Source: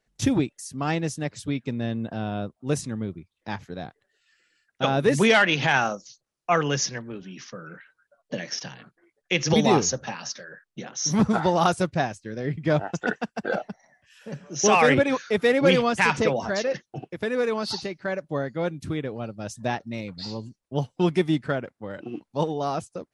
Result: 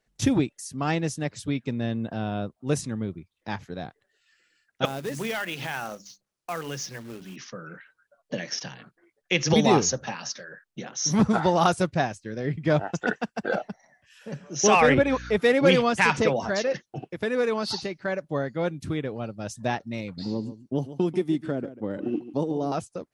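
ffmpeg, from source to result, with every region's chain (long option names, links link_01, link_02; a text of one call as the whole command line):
ffmpeg -i in.wav -filter_complex "[0:a]asettb=1/sr,asplit=3[link_01][link_02][link_03];[link_01]atrim=end=4.854[link_04];[link_02]atrim=start=4.85:end=7.36,asetpts=PTS-STARTPTS,afade=type=in:duration=0.004:curve=qsin,afade=type=out:start_time=2.506:duration=0.004:curve=qsin,acompressor=threshold=-37dB:ratio=2:attack=3.2:release=140:knee=1:detection=peak,acrusher=bits=3:mode=log:mix=0:aa=0.000001,bandreject=frequency=50:width_type=h:width=6,bandreject=frequency=100:width_type=h:width=6,bandreject=frequency=150:width_type=h:width=6,bandreject=frequency=200:width_type=h:width=6,bandreject=frequency=250:width_type=h:width=6,bandreject=frequency=300:width_type=h:width=6[link_05];[link_03]atrim=start=7.356[link_06];[link_04][link_05]acrossfade=duration=0.004:curve1=hsin:curve2=qsin[link_07];[link_07][link_06]acrossfade=duration=0.004:curve1=qsin:curve2=hsin,asettb=1/sr,asplit=3[link_08][link_09][link_10];[link_08]atrim=end=14.804[link_11];[link_09]atrim=start=14.8:end=15.37,asetpts=PTS-STARTPTS,afade=type=in:duration=0.004:curve=qsin,afade=type=out:start_time=0.566:duration=0.004:curve=qsin,highshelf=frequency=4300:gain=-8,acompressor=mode=upward:threshold=-32dB:ratio=2.5:attack=3.2:release=140:knee=2.83:detection=peak,aeval=exprs='val(0)+0.0112*(sin(2*PI*60*n/s)+sin(2*PI*2*60*n/s)/2+sin(2*PI*3*60*n/s)/3+sin(2*PI*4*60*n/s)/4+sin(2*PI*5*60*n/s)/5)':channel_layout=same[link_12];[link_10]atrim=start=15.366[link_13];[link_11][link_12]acrossfade=duration=0.004:curve1=hsin:curve2=qsin[link_14];[link_14][link_13]acrossfade=duration=0.004:curve1=qsin:curve2=hsin,asettb=1/sr,asplit=3[link_15][link_16][link_17];[link_15]atrim=end=20.174[link_18];[link_16]atrim=start=20.17:end=22.72,asetpts=PTS-STARTPTS,afade=type=in:duration=0.004:curve=qsin,afade=type=out:start_time=2.546:duration=0.004:curve=qsin,equalizer=frequency=290:width_type=o:width=1.5:gain=10,acrossover=split=710|6800[link_19][link_20][link_21];[link_19]acompressor=threshold=-24dB:ratio=4[link_22];[link_20]acompressor=threshold=-43dB:ratio=4[link_23];[link_21]acompressor=threshold=-58dB:ratio=4[link_24];[link_22][link_23][link_24]amix=inputs=3:normalize=0,aecho=1:1:141:0.2,atrim=end_sample=112455[link_25];[link_17]atrim=start=22.716[link_26];[link_18][link_25]acrossfade=duration=0.004:curve1=hsin:curve2=qsin[link_27];[link_27][link_26]acrossfade=duration=0.004:curve1=qsin:curve2=hsin" out.wav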